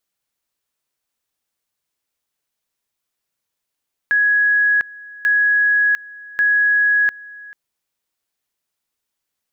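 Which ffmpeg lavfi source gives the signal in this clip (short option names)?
-f lavfi -i "aevalsrc='pow(10,(-12-22*gte(mod(t,1.14),0.7))/20)*sin(2*PI*1670*t)':d=3.42:s=44100"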